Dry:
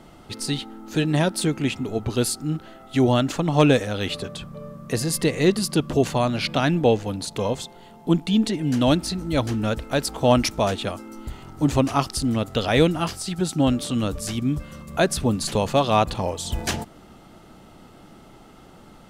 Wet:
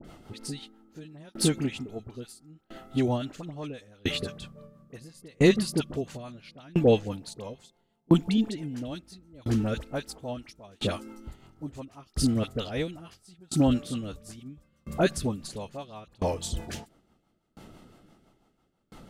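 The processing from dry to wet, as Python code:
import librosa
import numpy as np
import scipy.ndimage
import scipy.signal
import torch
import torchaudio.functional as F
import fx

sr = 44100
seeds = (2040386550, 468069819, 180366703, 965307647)

y = fx.dispersion(x, sr, late='highs', ms=45.0, hz=1400.0)
y = fx.rotary(y, sr, hz=6.0)
y = fx.tremolo_decay(y, sr, direction='decaying', hz=0.74, depth_db=32)
y = F.gain(torch.from_numpy(y), 3.0).numpy()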